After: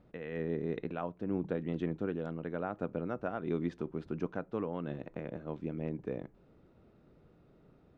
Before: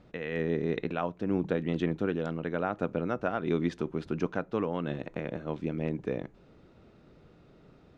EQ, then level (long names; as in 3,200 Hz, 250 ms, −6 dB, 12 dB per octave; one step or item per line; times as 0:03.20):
high-shelf EQ 2,100 Hz −9 dB
−5.0 dB